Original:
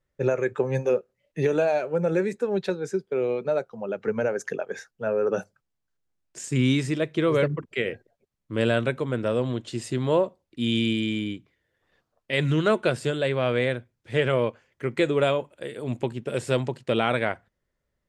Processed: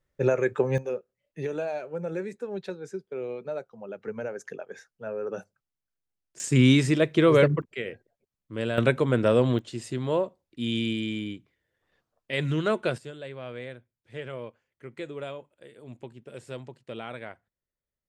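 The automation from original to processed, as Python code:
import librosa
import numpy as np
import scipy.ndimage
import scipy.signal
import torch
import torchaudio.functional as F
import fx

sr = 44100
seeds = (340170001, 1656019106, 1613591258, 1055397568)

y = fx.gain(x, sr, db=fx.steps((0.0, 0.5), (0.78, -8.5), (6.4, 3.5), (7.62, -6.5), (8.78, 4.0), (9.59, -4.0), (12.98, -14.5)))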